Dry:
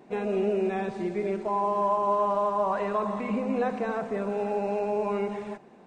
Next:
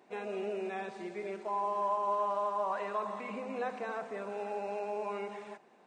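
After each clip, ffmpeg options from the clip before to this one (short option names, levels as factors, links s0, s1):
-af "highpass=f=740:p=1,volume=0.631"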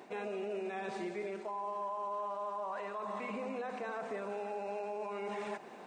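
-af "areverse,acompressor=threshold=0.00708:ratio=10,areverse,alimiter=level_in=9.44:limit=0.0631:level=0:latency=1:release=119,volume=0.106,volume=3.98"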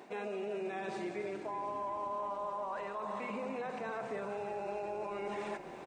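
-filter_complex "[0:a]asplit=8[s0][s1][s2][s3][s4][s5][s6][s7];[s1]adelay=357,afreqshift=-38,volume=0.237[s8];[s2]adelay=714,afreqshift=-76,volume=0.146[s9];[s3]adelay=1071,afreqshift=-114,volume=0.0912[s10];[s4]adelay=1428,afreqshift=-152,volume=0.0562[s11];[s5]adelay=1785,afreqshift=-190,volume=0.0351[s12];[s6]adelay=2142,afreqshift=-228,volume=0.0216[s13];[s7]adelay=2499,afreqshift=-266,volume=0.0135[s14];[s0][s8][s9][s10][s11][s12][s13][s14]amix=inputs=8:normalize=0"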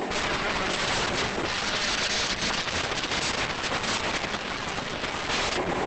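-af "aeval=exprs='0.0398*sin(PI/2*7.08*val(0)/0.0398)':c=same,volume=1.78" -ar 48000 -c:a libopus -b:a 10k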